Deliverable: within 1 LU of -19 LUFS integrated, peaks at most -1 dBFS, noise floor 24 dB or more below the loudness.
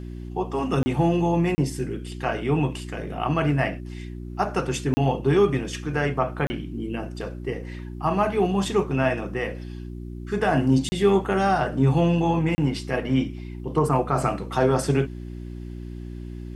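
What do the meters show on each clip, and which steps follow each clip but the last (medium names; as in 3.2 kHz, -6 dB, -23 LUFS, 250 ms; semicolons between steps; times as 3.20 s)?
dropouts 6; longest dropout 30 ms; hum 60 Hz; highest harmonic 360 Hz; hum level -33 dBFS; loudness -24.0 LUFS; peak level -8.0 dBFS; loudness target -19.0 LUFS
-> interpolate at 0.83/1.55/4.94/6.47/10.89/12.55 s, 30 ms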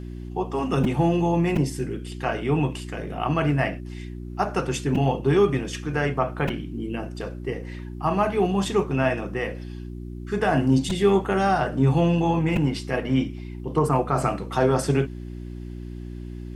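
dropouts 0; hum 60 Hz; highest harmonic 360 Hz; hum level -33 dBFS
-> de-hum 60 Hz, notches 6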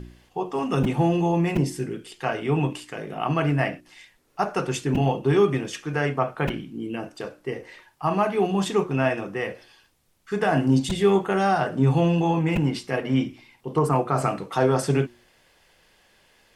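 hum not found; loudness -24.0 LUFS; peak level -9.0 dBFS; loudness target -19.0 LUFS
-> trim +5 dB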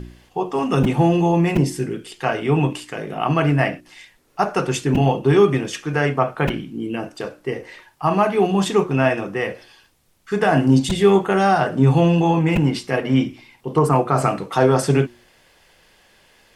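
loudness -19.0 LUFS; peak level -4.0 dBFS; noise floor -56 dBFS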